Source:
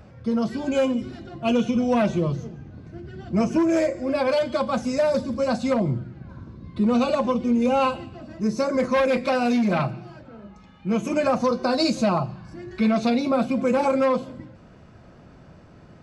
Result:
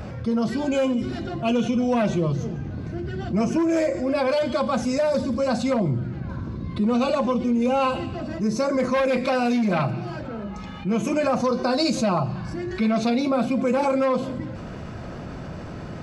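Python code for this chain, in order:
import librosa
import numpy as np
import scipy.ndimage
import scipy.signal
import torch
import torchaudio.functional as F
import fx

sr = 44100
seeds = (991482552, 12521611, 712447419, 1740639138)

y = fx.env_flatten(x, sr, amount_pct=50)
y = y * librosa.db_to_amplitude(-2.0)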